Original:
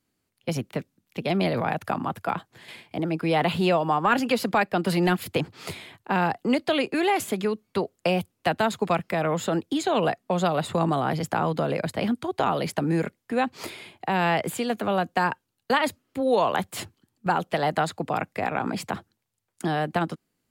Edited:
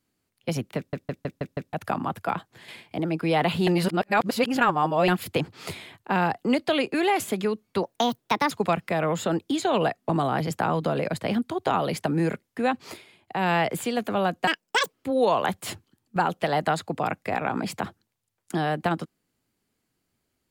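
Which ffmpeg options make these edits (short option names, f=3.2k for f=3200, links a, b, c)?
-filter_complex "[0:a]asplit=16[a][b][c][d][e][f][g][h][i][j][k][l][m][n][o][p];[a]atrim=end=0.932[q];[b]atrim=start=0.768:end=0.932[r];[c]atrim=start=0.768:end=0.932[s];[d]atrim=start=0.768:end=0.932[t];[e]atrim=start=0.768:end=0.932[u];[f]atrim=start=0.768:end=0.932[v];[g]atrim=start=1.728:end=3.672[w];[h]atrim=start=3.668:end=5.082,asetpts=PTS-STARTPTS,areverse[x];[i]atrim=start=5.078:end=7.834[y];[j]atrim=start=7.83:end=8.73,asetpts=PTS-STARTPTS,asetrate=58212,aresample=44100,atrim=end_sample=30068,asetpts=PTS-STARTPTS[z];[k]atrim=start=8.726:end=10.312[aa];[l]atrim=start=10.818:end=13.78,asetpts=PTS-STARTPTS,afade=t=out:st=2.672:d=0.29:silence=0.266073[ab];[m]atrim=start=13.78:end=13.9,asetpts=PTS-STARTPTS,volume=-11.5dB[ac];[n]atrim=start=13.9:end=15.204,asetpts=PTS-STARTPTS,afade=t=in:d=0.29:silence=0.266073[ad];[o]atrim=start=15.2:end=16.03,asetpts=PTS-STARTPTS,asetrate=80262,aresample=44100[ae];[p]atrim=start=16.026[af];[q][r]acrossfade=d=0.004:c1=hsin:c2=hsin[ag];[ag][s]acrossfade=d=0.004:c1=hsin:c2=hsin[ah];[ah][t]acrossfade=d=0.004:c1=hsin:c2=hsin[ai];[ai][u]acrossfade=d=0.004:c1=hsin:c2=hsin[aj];[aj][v]acrossfade=d=0.004:c1=hsin:c2=hsin[ak];[ak][w]acrossfade=d=0.004:c1=hsin:c2=hsin[al];[al][x]acrossfade=d=0.004:c1=hsin:c2=hsin[am];[am][y]acrossfade=d=0.004:c1=hsin:c2=hsin[an];[an][z]acrossfade=d=0.004:c1=hsin:c2=hsin[ao];[ao][aa]acrossfade=d=0.004:c1=hsin:c2=hsin[ap];[ab][ac][ad]concat=n=3:v=0:a=1[aq];[ap][aq]acrossfade=d=0.004:c1=hsin:c2=hsin[ar];[ar][ae]acrossfade=d=0.004:c1=hsin:c2=hsin[as];[as][af]acrossfade=d=0.004:c1=hsin:c2=hsin"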